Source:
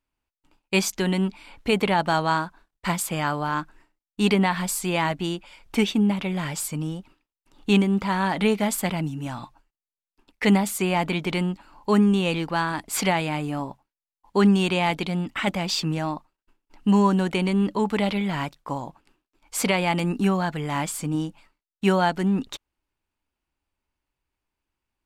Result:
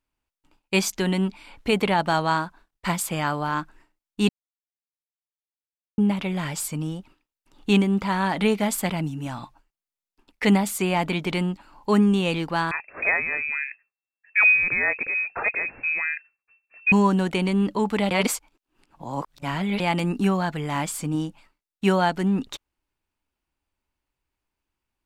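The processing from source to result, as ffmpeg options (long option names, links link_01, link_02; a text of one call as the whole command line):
ffmpeg -i in.wav -filter_complex "[0:a]asettb=1/sr,asplit=3[link_01][link_02][link_03];[link_01]atrim=end=12.714[link_04];[link_02]atrim=start=12.71:end=16.92,asetpts=PTS-STARTPTS,afade=type=in:duration=0.004:curve=qsin,afade=type=out:start_time=4.206:duration=0.004:curve=qsin,lowpass=frequency=2300:width_type=q:width=0.5098,lowpass=frequency=2300:width_type=q:width=0.6013,lowpass=frequency=2300:width_type=q:width=0.9,lowpass=frequency=2300:width_type=q:width=2.563,afreqshift=-2700[link_05];[link_03]atrim=start=16.916[link_06];[link_04][link_05]acrossfade=duration=0.004:curve1=hsin:curve2=qsin[link_07];[link_07][link_06]acrossfade=duration=0.004:curve1=qsin:curve2=hsin,asplit=5[link_08][link_09][link_10][link_11][link_12];[link_08]atrim=end=4.29,asetpts=PTS-STARTPTS,afade=type=out:start_time=4.286:duration=0.004:curve=hsin[link_13];[link_09]atrim=start=4.29:end=5.98,asetpts=PTS-STARTPTS,volume=0[link_14];[link_10]atrim=start=5.98:end=18.112,asetpts=PTS-STARTPTS,afade=type=in:duration=0.004:curve=hsin[link_15];[link_11]atrim=start=18.108:end=19.802,asetpts=PTS-STARTPTS,areverse[link_16];[link_12]atrim=start=19.798[link_17];[link_13][link_14][link_15]concat=n=3:v=0:a=1[link_18];[link_18][link_16]acrossfade=duration=0.004:curve1=hsin:curve2=hsin[link_19];[link_19][link_17]acrossfade=duration=0.004:curve1=hsin:curve2=hsin" out.wav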